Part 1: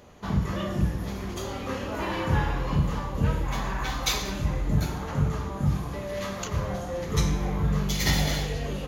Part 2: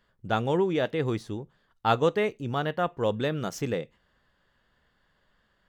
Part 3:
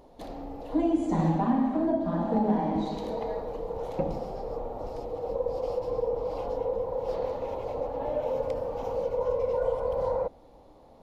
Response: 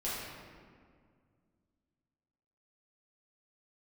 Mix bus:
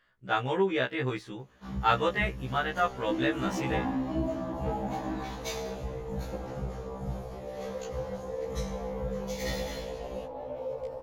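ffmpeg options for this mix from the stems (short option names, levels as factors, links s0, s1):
-filter_complex "[0:a]adelay=1400,volume=0.335[s0];[1:a]equalizer=f=1900:t=o:w=2:g=10.5,volume=0.668[s1];[2:a]adelay=2350,volume=0.562[s2];[s0][s1][s2]amix=inputs=3:normalize=0,afftfilt=real='re*1.73*eq(mod(b,3),0)':imag='im*1.73*eq(mod(b,3),0)':win_size=2048:overlap=0.75"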